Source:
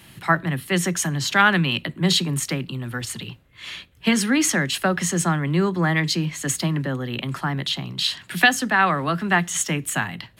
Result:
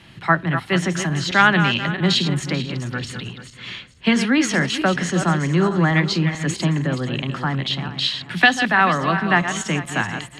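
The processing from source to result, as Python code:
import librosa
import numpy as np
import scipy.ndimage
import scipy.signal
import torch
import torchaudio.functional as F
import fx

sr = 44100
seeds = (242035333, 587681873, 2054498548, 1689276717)

y = fx.reverse_delay_fb(x, sr, ms=219, feedback_pct=48, wet_db=-8.5)
y = scipy.signal.sosfilt(scipy.signal.butter(2, 4800.0, 'lowpass', fs=sr, output='sos'), y)
y = F.gain(torch.from_numpy(y), 2.0).numpy()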